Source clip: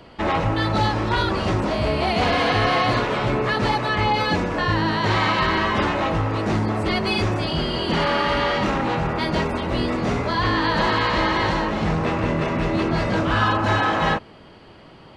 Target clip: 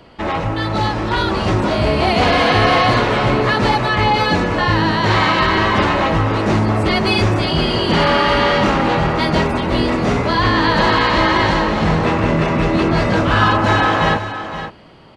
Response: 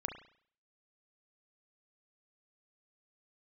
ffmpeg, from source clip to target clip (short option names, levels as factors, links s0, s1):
-af "dynaudnorm=f=280:g=9:m=2,aecho=1:1:516:0.282,volume=1.12"